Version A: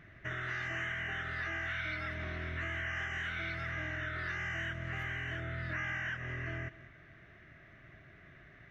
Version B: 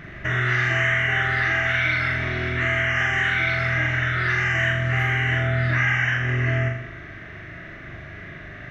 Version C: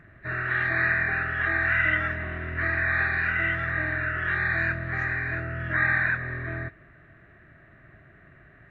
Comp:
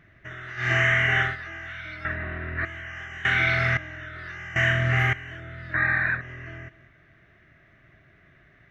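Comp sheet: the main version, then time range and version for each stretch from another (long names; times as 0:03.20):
A
0:00.64–0:01.29: punch in from B, crossfade 0.16 s
0:02.05–0:02.65: punch in from C
0:03.25–0:03.77: punch in from B
0:04.56–0:05.13: punch in from B
0:05.74–0:06.21: punch in from C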